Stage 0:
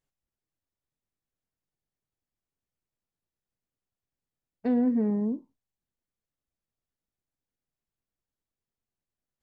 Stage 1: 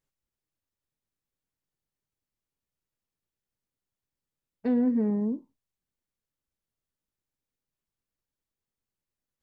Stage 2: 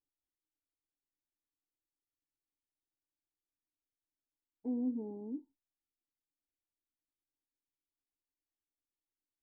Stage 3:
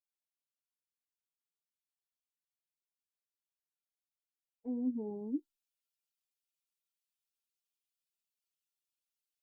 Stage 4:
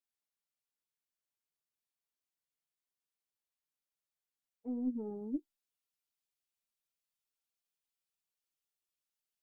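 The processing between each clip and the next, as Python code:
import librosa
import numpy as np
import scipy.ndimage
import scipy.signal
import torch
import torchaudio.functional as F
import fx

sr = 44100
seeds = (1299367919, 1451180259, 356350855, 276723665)

y1 = fx.notch(x, sr, hz=710.0, q=12.0)
y2 = fx.formant_cascade(y1, sr, vowel='u')
y2 = fx.peak_eq(y2, sr, hz=190.0, db=-15.0, octaves=0.67)
y2 = y2 * 10.0 ** (2.0 / 20.0)
y3 = fx.bin_expand(y2, sr, power=2.0)
y3 = fx.rider(y3, sr, range_db=10, speed_s=0.5)
y3 = y3 * 10.0 ** (4.5 / 20.0)
y4 = fx.tracing_dist(y3, sr, depth_ms=0.068)
y4 = y4 * 10.0 ** (-1.0 / 20.0)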